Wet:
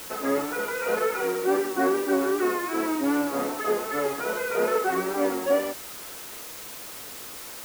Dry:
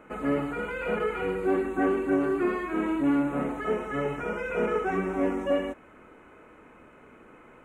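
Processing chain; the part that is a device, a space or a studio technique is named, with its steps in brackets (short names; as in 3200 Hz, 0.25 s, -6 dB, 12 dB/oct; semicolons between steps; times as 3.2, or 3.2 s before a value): wax cylinder (BPF 360–2300 Hz; wow and flutter; white noise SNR 13 dB); gain +4.5 dB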